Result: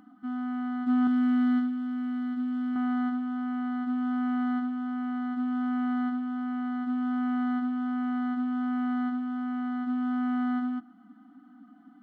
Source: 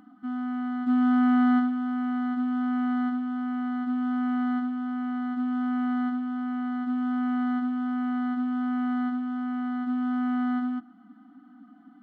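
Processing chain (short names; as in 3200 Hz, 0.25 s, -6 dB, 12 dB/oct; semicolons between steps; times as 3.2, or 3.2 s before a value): 1.07–2.76 bell 870 Hz -11.5 dB 1.5 oct; gain -1.5 dB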